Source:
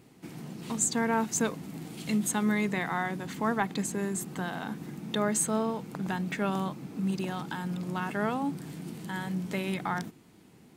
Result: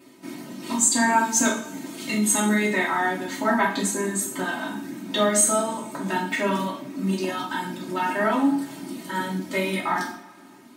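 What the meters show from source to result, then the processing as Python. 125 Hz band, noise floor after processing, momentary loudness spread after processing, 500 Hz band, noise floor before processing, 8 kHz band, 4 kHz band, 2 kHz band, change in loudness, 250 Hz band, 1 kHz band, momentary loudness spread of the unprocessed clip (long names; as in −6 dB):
+0.5 dB, −48 dBFS, 14 LU, +7.0 dB, −56 dBFS, +10.0 dB, +9.5 dB, +9.0 dB, +7.5 dB, +5.5 dB, +8.5 dB, 12 LU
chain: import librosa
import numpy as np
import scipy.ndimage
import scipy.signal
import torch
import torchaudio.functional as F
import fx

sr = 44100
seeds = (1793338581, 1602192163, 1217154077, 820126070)

y = fx.dereverb_blind(x, sr, rt60_s=0.71)
y = scipy.signal.sosfilt(scipy.signal.butter(2, 150.0, 'highpass', fs=sr, output='sos'), y)
y = y + 0.82 * np.pad(y, (int(3.2 * sr / 1000.0), 0))[:len(y)]
y = fx.rev_double_slope(y, sr, seeds[0], early_s=0.5, late_s=2.0, knee_db=-20, drr_db=-5.0)
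y = F.gain(torch.from_numpy(y), 1.0).numpy()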